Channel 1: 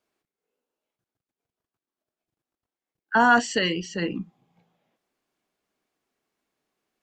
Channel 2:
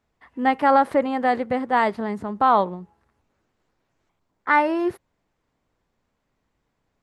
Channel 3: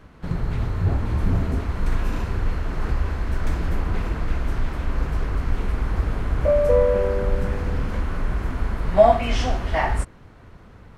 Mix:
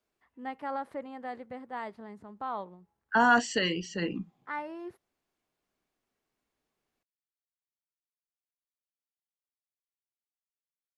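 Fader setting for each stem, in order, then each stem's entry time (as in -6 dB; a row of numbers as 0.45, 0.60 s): -4.5 dB, -18.5 dB, off; 0.00 s, 0.00 s, off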